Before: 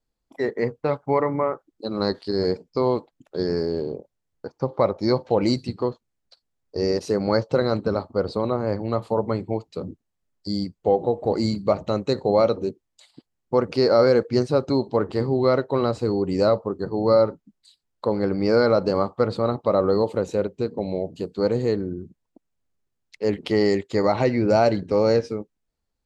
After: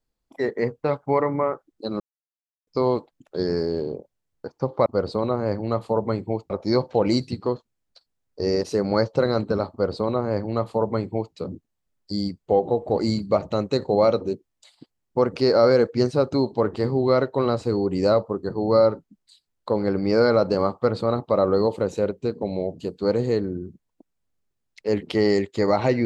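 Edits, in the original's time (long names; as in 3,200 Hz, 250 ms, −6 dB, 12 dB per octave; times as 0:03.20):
0:02.00–0:02.67: silence
0:08.07–0:09.71: duplicate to 0:04.86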